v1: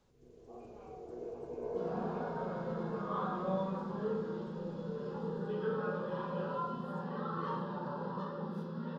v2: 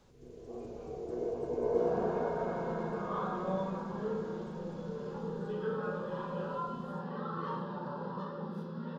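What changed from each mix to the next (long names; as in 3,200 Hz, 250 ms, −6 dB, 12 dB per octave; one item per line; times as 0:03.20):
first sound +8.0 dB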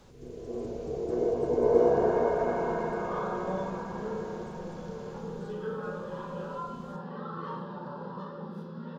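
first sound +8.0 dB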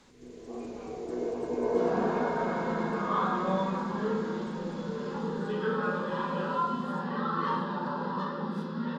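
first sound −10.0 dB
master: add octave-band graphic EQ 125/250/1,000/2,000/4,000/8,000 Hz −3/+11/+6/+11/+7/+11 dB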